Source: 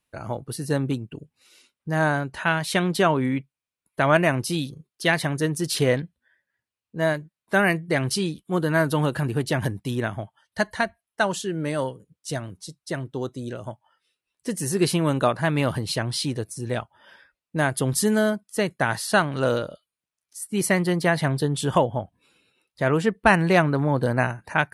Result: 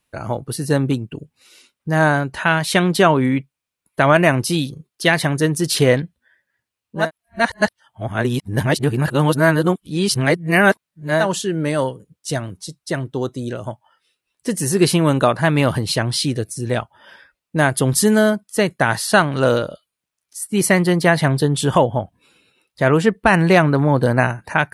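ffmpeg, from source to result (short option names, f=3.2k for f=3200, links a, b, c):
-filter_complex "[0:a]asettb=1/sr,asplit=3[a][b][c];[a]atrim=end=16.164[d];[b]atrim=start=16.16:end=16.66,asetpts=PTS-STARTPTS,afade=t=in:d=0.004:c=qsin,afade=t=out:st=0.496:d=0.004:c=qsin,equalizer=f=940:t=o:w=0.44:g=-12.5[e];[c]atrim=start=16.656[f];[d][e]acrossfade=d=0.004:c1=hsin:c2=qsin[g];[g][f]acrossfade=d=0.004:c1=qsin:c2=hsin,asplit=3[h][i][j];[h]atrim=end=7.11,asetpts=PTS-STARTPTS[k];[i]atrim=start=6.95:end=11.3,asetpts=PTS-STARTPTS,areverse[l];[j]atrim=start=11.14,asetpts=PTS-STARTPTS[m];[k][l]acrossfade=d=0.16:c1=tri:c2=tri[n];[n][m]acrossfade=d=0.16:c1=tri:c2=tri,alimiter=level_in=7.5dB:limit=-1dB:release=50:level=0:latency=1,volume=-1dB"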